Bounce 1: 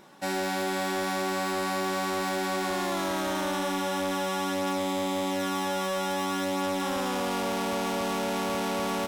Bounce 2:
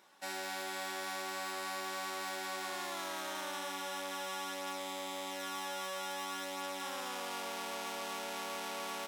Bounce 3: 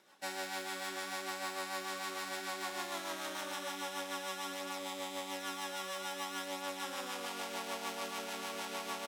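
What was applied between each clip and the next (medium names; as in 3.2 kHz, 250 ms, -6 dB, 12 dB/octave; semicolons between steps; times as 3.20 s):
high-pass 1.1 kHz 6 dB/octave; trim -6.5 dB
rotary cabinet horn 6.7 Hz; delay 70 ms -14 dB; trim +2.5 dB; Opus 96 kbps 48 kHz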